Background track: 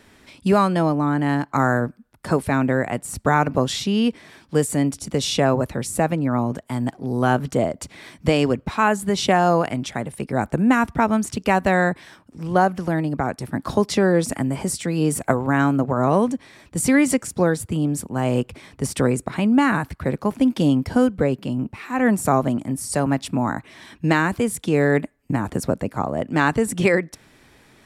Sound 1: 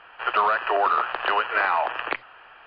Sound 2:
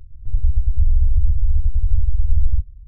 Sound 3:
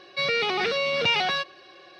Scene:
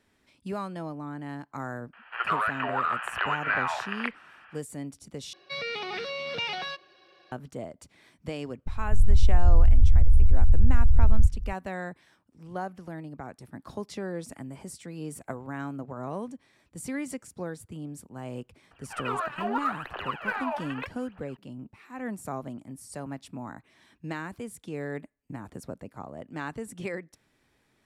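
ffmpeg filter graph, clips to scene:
-filter_complex "[1:a]asplit=2[a][b];[0:a]volume=-17dB[c];[a]equalizer=f=1.9k:t=o:w=2.1:g=12[d];[2:a]alimiter=level_in=16.5dB:limit=-1dB:release=50:level=0:latency=1[e];[b]aphaser=in_gain=1:out_gain=1:delay=3.5:decay=0.77:speed=0.81:type=triangular[f];[c]asplit=2[g][h];[g]atrim=end=5.334[i];[3:a]atrim=end=1.99,asetpts=PTS-STARTPTS,volume=-9dB[j];[h]atrim=start=7.316[k];[d]atrim=end=2.66,asetpts=PTS-STARTPTS,volume=-14.5dB,afade=t=in:d=0.004:c=hsin,afade=t=out:st=2.656:d=0.004:c=hsin,adelay=1930[l];[e]atrim=end=2.87,asetpts=PTS-STARTPTS,volume=-9dB,afade=t=in:d=0.004:c=hsin,afade=t=out:st=2.866:d=0.004:c=hsin,adelay=381906S[m];[f]atrim=end=2.66,asetpts=PTS-STARTPTS,volume=-13.5dB,afade=t=in:d=0.004:c=hsin,afade=t=out:st=2.656:d=0.004:c=hsin,adelay=18710[n];[i][j]acrossfade=d=0.004:c1=hsin:c2=hsin[o];[o][k]acrossfade=d=0.004:c1=hsin:c2=hsin[p];[p][l][m][n]amix=inputs=4:normalize=0"

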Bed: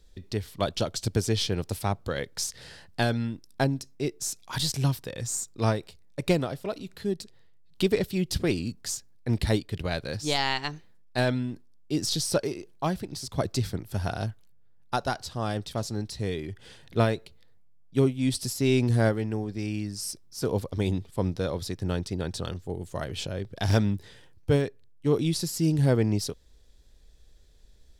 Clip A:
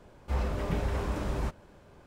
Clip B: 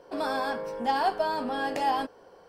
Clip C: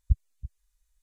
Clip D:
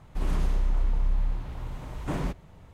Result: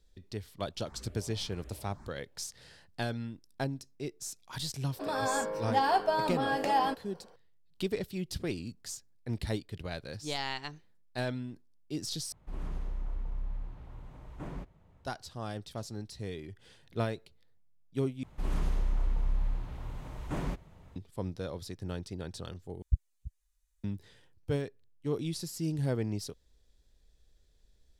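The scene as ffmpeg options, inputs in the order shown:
-filter_complex "[4:a]asplit=2[a][b];[0:a]volume=-9dB[c];[1:a]asplit=2[d][e];[e]afreqshift=1.8[f];[d][f]amix=inputs=2:normalize=1[g];[2:a]dynaudnorm=f=120:g=5:m=4.5dB[h];[a]highshelf=f=2.8k:g=-7.5[i];[c]asplit=4[j][k][l][m];[j]atrim=end=12.324[n];[i]atrim=end=2.73,asetpts=PTS-STARTPTS,volume=-11dB[o];[k]atrim=start=15.046:end=18.234[p];[b]atrim=end=2.73,asetpts=PTS-STARTPTS,volume=-4.5dB[q];[l]atrim=start=20.956:end=22.824[r];[3:a]atrim=end=1.02,asetpts=PTS-STARTPTS,volume=-4.5dB[s];[m]atrim=start=23.836[t];[g]atrim=end=2.06,asetpts=PTS-STARTPTS,volume=-17.5dB,afade=t=in:d=0.004:c=hsin,afade=t=out:st=2.056:d=0.004:c=hsin,adelay=570[u];[h]atrim=end=2.48,asetpts=PTS-STARTPTS,volume=-5.5dB,afade=t=in:d=0.004:c=hsin,afade=t=out:st=2.476:d=0.004:c=hsin,adelay=4880[v];[n][o]acrossfade=d=0.004:c1=hsin:c2=hsin[w];[w][p]acrossfade=d=0.004:c1=hsin:c2=hsin[x];[x][q]acrossfade=d=0.004:c1=hsin:c2=hsin[y];[y][r]acrossfade=d=0.004:c1=hsin:c2=hsin[z];[z][s]acrossfade=d=0.004:c1=hsin:c2=hsin[aa];[aa][t]acrossfade=d=0.004:c1=hsin:c2=hsin[ab];[ab][u][v]amix=inputs=3:normalize=0"

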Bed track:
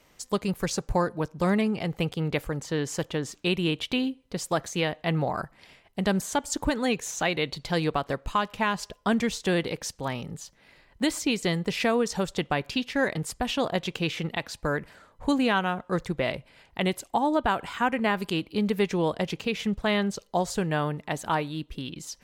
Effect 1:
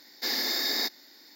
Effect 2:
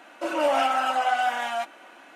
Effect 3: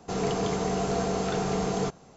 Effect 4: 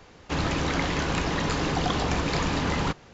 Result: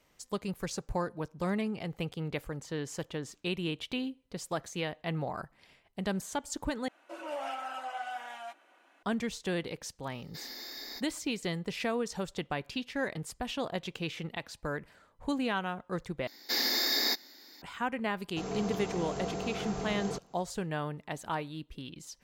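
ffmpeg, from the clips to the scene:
-filter_complex "[1:a]asplit=2[a][b];[0:a]volume=-8dB[c];[2:a]highpass=220[d];[c]asplit=3[e][f][g];[e]atrim=end=6.884[h];[d]atrim=end=2.15,asetpts=PTS-STARTPTS,volume=-15dB[i];[f]atrim=start=9.026:end=16.274[j];[b]atrim=end=1.35,asetpts=PTS-STARTPTS,volume=-0.5dB[k];[g]atrim=start=17.616[l];[a]atrim=end=1.35,asetpts=PTS-STARTPTS,volume=-15dB,afade=t=in:d=0.004:c=hsin,afade=t=out:st=1.346:d=0.004:c=hsin,adelay=10120[m];[3:a]atrim=end=2.16,asetpts=PTS-STARTPTS,volume=-9dB,afade=t=in:d=0.004:c=hsin,afade=t=out:st=2.156:d=0.004:c=hsin,adelay=806148S[n];[h][i]acrossfade=d=0.004:c1=hsin:c2=hsin[o];[o][j]acrossfade=d=0.004:c1=hsin:c2=hsin[p];[p][k]acrossfade=d=0.004:c1=hsin:c2=hsin[q];[q][l]acrossfade=d=0.004:c1=hsin:c2=hsin[r];[r][m][n]amix=inputs=3:normalize=0"

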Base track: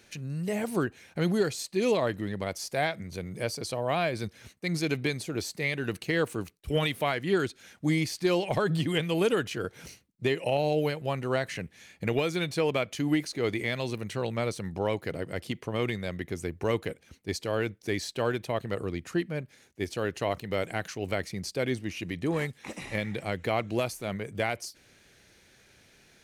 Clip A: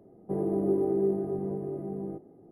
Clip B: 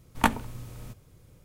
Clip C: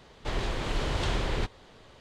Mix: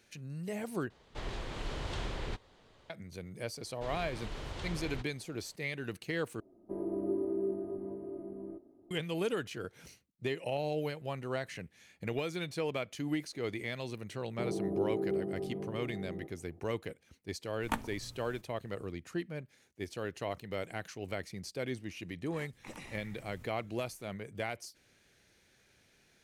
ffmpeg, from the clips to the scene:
-filter_complex "[3:a]asplit=2[a][b];[1:a]asplit=2[c][d];[2:a]asplit=2[e][f];[0:a]volume=-8dB[g];[c]aecho=1:1:3.2:0.79[h];[f]acompressor=threshold=-38dB:ratio=6:attack=3.2:release=140:knee=1:detection=peak[i];[g]asplit=3[j][k][l];[j]atrim=end=0.904[m];[a]atrim=end=2,asetpts=PTS-STARTPTS,volume=-9dB[n];[k]atrim=start=2.896:end=6.404[o];[h]atrim=end=2.51,asetpts=PTS-STARTPTS,volume=-9.5dB[p];[l]atrim=start=8.906[q];[b]atrim=end=2,asetpts=PTS-STARTPTS,volume=-12.5dB,afade=t=in:d=0.004:c=hsin,afade=t=out:st=1.996:d=0.004:c=hsin,adelay=3560[r];[d]atrim=end=2.51,asetpts=PTS-STARTPTS,volume=-7dB,afade=t=in:d=0.004:c=hsin,afade=t=out:st=2.506:d=0.004:c=hsin,adelay=14090[s];[e]atrim=end=1.44,asetpts=PTS-STARTPTS,volume=-11.5dB,afade=t=in:d=0.004:c=hsin,afade=t=out:st=1.436:d=0.004:c=hsin,adelay=770868S[t];[i]atrim=end=1.44,asetpts=PTS-STARTPTS,volume=-12dB,afade=t=in:d=0.004:c=hsin,afade=t=out:st=1.436:d=0.004:c=hsin,adelay=22520[u];[m][n]acrossfade=d=0.004:c1=hsin:c2=hsin[v];[v][o]acrossfade=d=0.004:c1=hsin:c2=hsin[w];[w][p]acrossfade=d=0.004:c1=hsin:c2=hsin[x];[x][q]acrossfade=d=0.004:c1=hsin:c2=hsin[y];[y][r][s][t][u]amix=inputs=5:normalize=0"

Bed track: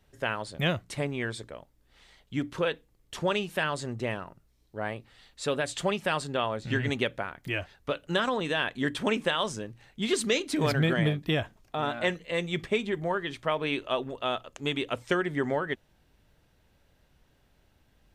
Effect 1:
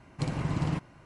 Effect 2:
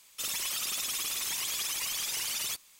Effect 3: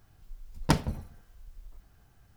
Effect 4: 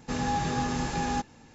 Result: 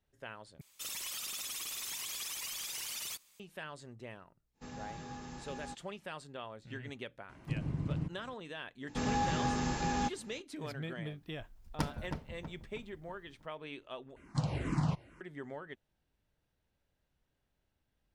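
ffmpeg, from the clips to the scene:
-filter_complex "[4:a]asplit=2[a][b];[1:a]asplit=2[c][d];[0:a]volume=-16dB[e];[c]acrossover=split=120|400[f][g][h];[f]acompressor=threshold=-36dB:ratio=4[i];[g]acompressor=threshold=-35dB:ratio=4[j];[h]acompressor=threshold=-58dB:ratio=4[k];[i][j][k]amix=inputs=3:normalize=0[l];[3:a]asplit=2[m][n];[n]adelay=321,lowpass=f=2k:p=1,volume=-5dB,asplit=2[o][p];[p]adelay=321,lowpass=f=2k:p=1,volume=0.46,asplit=2[q][r];[r]adelay=321,lowpass=f=2k:p=1,volume=0.46,asplit=2[s][t];[t]adelay=321,lowpass=f=2k:p=1,volume=0.46,asplit=2[u][v];[v]adelay=321,lowpass=f=2k:p=1,volume=0.46,asplit=2[w][x];[x]adelay=321,lowpass=f=2k:p=1,volume=0.46[y];[m][o][q][s][u][w][y]amix=inputs=7:normalize=0[z];[d]asplit=2[aa][ab];[ab]afreqshift=-2.2[ac];[aa][ac]amix=inputs=2:normalize=1[ad];[e]asplit=3[ae][af][ag];[ae]atrim=end=0.614[ah];[2:a]atrim=end=2.79,asetpts=PTS-STARTPTS,volume=-7.5dB[ai];[af]atrim=start=3.396:end=14.164[aj];[ad]atrim=end=1.05,asetpts=PTS-STARTPTS,volume=-0.5dB[ak];[ag]atrim=start=15.206[al];[a]atrim=end=1.54,asetpts=PTS-STARTPTS,volume=-17dB,afade=t=in:d=0.1,afade=t=out:st=1.44:d=0.1,adelay=199773S[am];[l]atrim=end=1.05,asetpts=PTS-STARTPTS,volume=-1.5dB,afade=t=in:d=0.004:c=hsin,afade=t=out:st=1.046:d=0.004:c=hsin,adelay=7290[an];[b]atrim=end=1.54,asetpts=PTS-STARTPTS,volume=-4dB,afade=t=in:d=0.004:c=hsin,afade=t=out:st=1.536:d=0.004:c=hsin,adelay=8870[ao];[z]atrim=end=2.36,asetpts=PTS-STARTPTS,volume=-11dB,afade=t=in:d=0.004:c=hsin,afade=t=out:st=2.356:d=0.004:c=hsin,adelay=11100[ap];[ah][ai]acrossfade=d=0.004:c1=hsin:c2=hsin[aq];[aq][aj]acrossfade=d=0.004:c1=hsin:c2=hsin[ar];[ar][ak]acrossfade=d=0.004:c1=hsin:c2=hsin[as];[as][al]acrossfade=d=0.004:c1=hsin:c2=hsin[at];[at][am][an][ao][ap]amix=inputs=5:normalize=0"

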